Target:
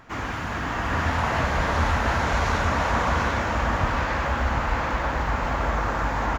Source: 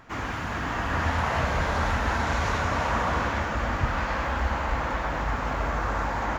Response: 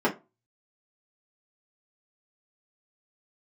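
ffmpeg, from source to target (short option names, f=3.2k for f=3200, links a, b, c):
-af "aecho=1:1:739:0.562,volume=1.5dB"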